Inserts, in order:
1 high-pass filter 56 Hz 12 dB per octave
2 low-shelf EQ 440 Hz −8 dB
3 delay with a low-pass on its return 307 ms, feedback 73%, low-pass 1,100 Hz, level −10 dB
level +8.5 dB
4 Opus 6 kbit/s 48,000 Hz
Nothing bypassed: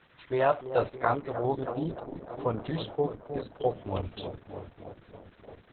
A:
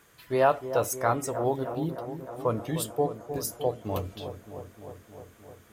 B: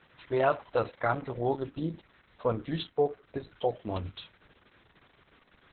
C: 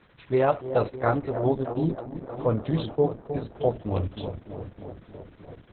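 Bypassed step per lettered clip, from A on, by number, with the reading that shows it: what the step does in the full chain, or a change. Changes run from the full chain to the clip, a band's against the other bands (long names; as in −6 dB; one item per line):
4, change in crest factor −1.5 dB
3, change in momentary loudness spread −5 LU
2, 125 Hz band +7.0 dB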